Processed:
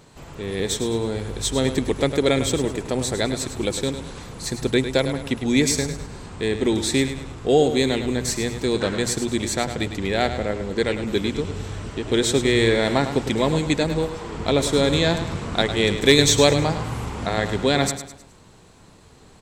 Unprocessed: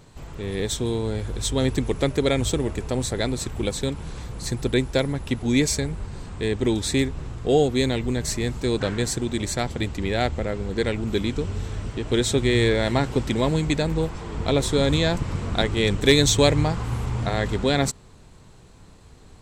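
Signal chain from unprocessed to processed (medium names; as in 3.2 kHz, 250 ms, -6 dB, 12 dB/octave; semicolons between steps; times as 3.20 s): bass shelf 98 Hz -10 dB; hum notches 60/120 Hz; on a send: feedback delay 104 ms, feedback 40%, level -10 dB; on the sum: trim +2.5 dB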